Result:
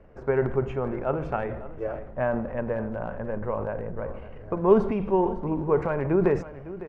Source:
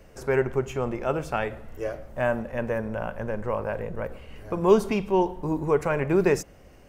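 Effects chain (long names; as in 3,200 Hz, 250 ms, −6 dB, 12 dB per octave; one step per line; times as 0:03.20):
low-pass filter 1,500 Hz 12 dB per octave
transient designer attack +4 dB, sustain +8 dB
single-tap delay 555 ms −15.5 dB
level −2.5 dB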